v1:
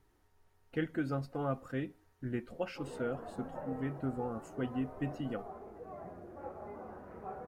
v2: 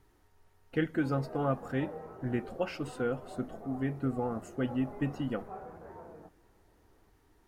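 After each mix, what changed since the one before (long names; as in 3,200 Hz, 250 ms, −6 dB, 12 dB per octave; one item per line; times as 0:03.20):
speech +4.5 dB
background: entry −1.75 s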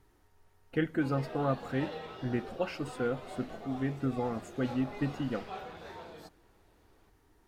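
background: remove Gaussian smoothing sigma 6.2 samples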